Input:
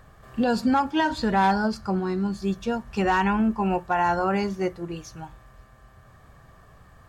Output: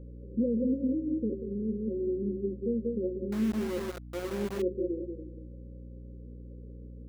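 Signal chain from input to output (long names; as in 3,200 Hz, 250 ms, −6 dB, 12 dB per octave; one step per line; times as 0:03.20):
stylus tracing distortion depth 0.3 ms
on a send: feedback echo with a high-pass in the loop 186 ms, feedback 25%, high-pass 270 Hz, level −5 dB
on the sum: brickwall limiter −21.5 dBFS, peak gain reduction 10.5 dB
in parallel at 0 dB: downward compressor 16 to 1, threshold −42 dBFS, peak gain reduction 17.5 dB
on the sum: brick-wall band-pass 200–560 Hz
0:03.32–0:04.62: centre clipping without the shift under −35.5 dBFS
mains hum 60 Hz, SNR 12 dB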